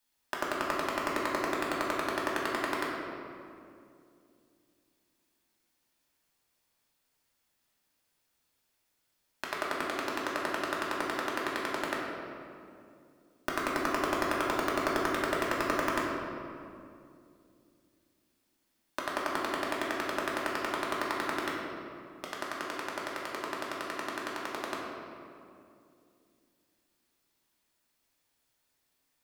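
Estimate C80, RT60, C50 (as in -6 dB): 1.5 dB, 2.4 s, 0.5 dB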